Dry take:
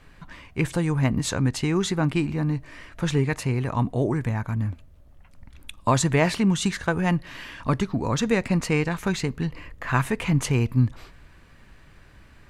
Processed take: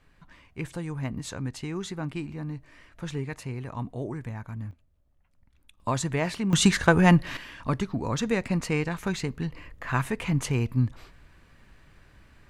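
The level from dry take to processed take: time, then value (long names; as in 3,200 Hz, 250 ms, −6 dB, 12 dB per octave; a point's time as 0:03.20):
−10 dB
from 0:04.71 −17 dB
from 0:05.80 −7 dB
from 0:06.53 +5 dB
from 0:07.37 −4 dB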